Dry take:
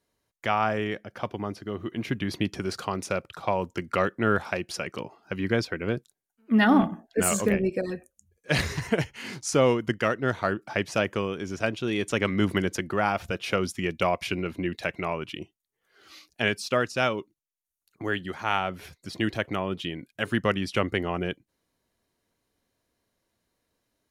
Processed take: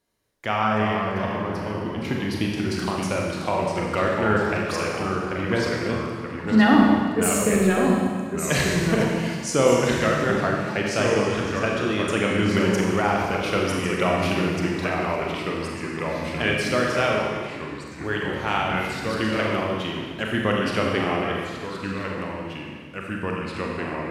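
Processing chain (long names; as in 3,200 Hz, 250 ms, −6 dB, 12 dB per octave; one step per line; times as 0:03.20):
four-comb reverb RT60 1.6 s, combs from 29 ms, DRR −1 dB
delay with pitch and tempo change per echo 277 ms, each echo −2 semitones, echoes 3, each echo −6 dB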